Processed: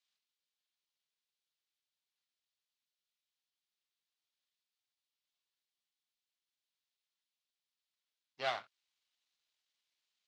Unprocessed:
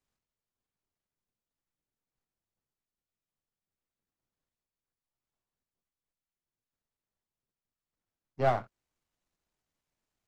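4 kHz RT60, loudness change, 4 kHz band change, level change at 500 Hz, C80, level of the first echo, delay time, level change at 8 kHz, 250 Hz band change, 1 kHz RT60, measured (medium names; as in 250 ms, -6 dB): no reverb, -9.0 dB, +7.5 dB, -12.0 dB, no reverb, no echo, no echo, no reading, -20.0 dB, no reverb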